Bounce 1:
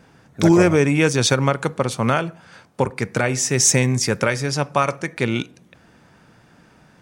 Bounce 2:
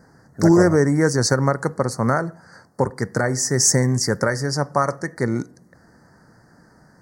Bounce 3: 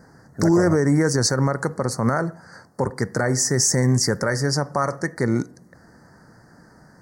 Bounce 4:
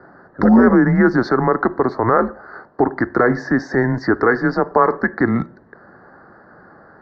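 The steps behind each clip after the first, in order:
elliptic band-stop 1900–4500 Hz, stop band 40 dB
limiter -11.5 dBFS, peak gain reduction 8 dB; gain +2 dB
mistuned SSB -120 Hz 320–3200 Hz; gain +9 dB

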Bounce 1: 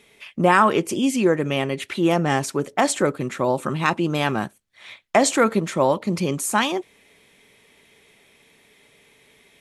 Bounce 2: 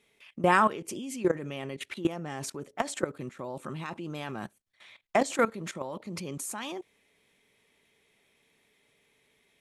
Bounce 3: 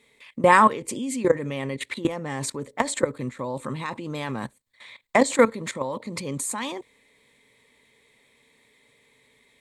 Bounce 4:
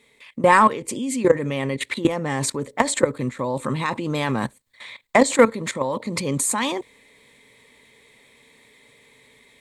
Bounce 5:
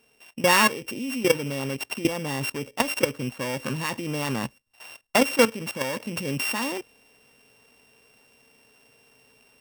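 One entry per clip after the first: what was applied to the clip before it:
level quantiser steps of 16 dB; gain -5 dB
ripple EQ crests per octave 1, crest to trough 8 dB; gain +6 dB
in parallel at -8.5 dB: soft clip -14.5 dBFS, distortion -10 dB; on the sum: AGC gain up to 4.5 dB
sample sorter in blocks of 16 samples; gain -4.5 dB

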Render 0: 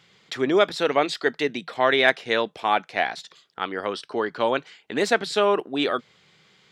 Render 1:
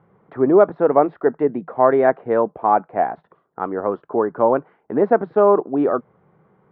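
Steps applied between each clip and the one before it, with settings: LPF 1100 Hz 24 dB/oct; gain +7 dB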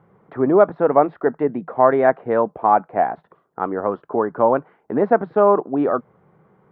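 dynamic EQ 380 Hz, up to -4 dB, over -25 dBFS, Q 1.6; gain +1.5 dB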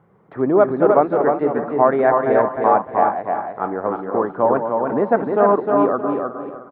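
regenerating reverse delay 0.182 s, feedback 44%, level -8 dB; feedback echo 0.307 s, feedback 26%, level -4 dB; gain -1 dB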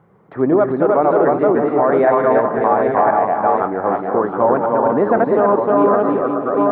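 reverse delay 0.518 s, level -3 dB; limiter -7.5 dBFS, peak gain reduction 7.5 dB; gain +3 dB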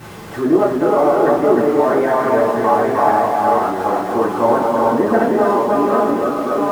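zero-crossing step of -28 dBFS; reverb, pre-delay 3 ms, DRR -8.5 dB; gain -9 dB

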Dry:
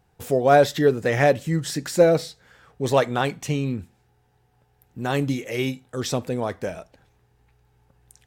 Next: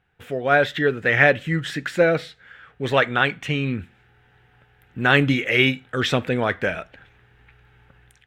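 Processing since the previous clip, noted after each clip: high shelf 3300 Hz -11 dB; AGC gain up to 13 dB; band shelf 2200 Hz +13.5 dB; gain -6.5 dB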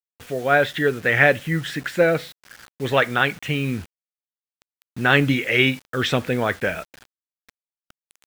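bit-crush 7-bit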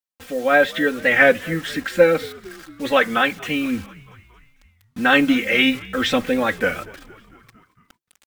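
comb 3.8 ms, depth 99%; frequency-shifting echo 0.227 s, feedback 65%, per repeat -72 Hz, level -22 dB; record warp 33 1/3 rpm, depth 100 cents; gain -1 dB

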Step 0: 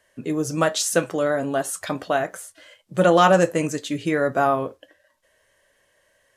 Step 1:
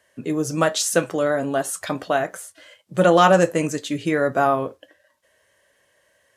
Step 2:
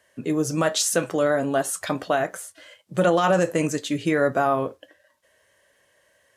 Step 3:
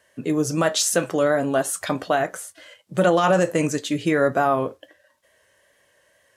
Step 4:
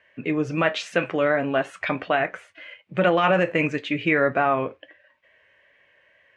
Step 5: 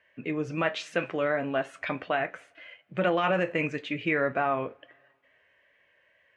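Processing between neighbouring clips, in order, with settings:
HPF 62 Hz; gain +1 dB
limiter -10.5 dBFS, peak gain reduction 9 dB
wow and flutter 29 cents; gain +1.5 dB
synth low-pass 2400 Hz, resonance Q 4; gain -2.5 dB
two-slope reverb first 0.28 s, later 2 s, from -21 dB, DRR 17.5 dB; gain -6 dB

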